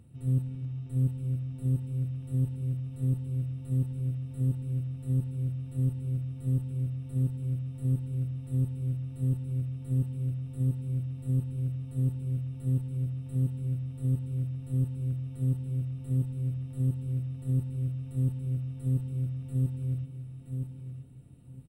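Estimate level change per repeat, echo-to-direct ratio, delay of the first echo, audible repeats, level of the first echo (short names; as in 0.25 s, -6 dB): -13.5 dB, -7.0 dB, 0.972 s, 2, -7.0 dB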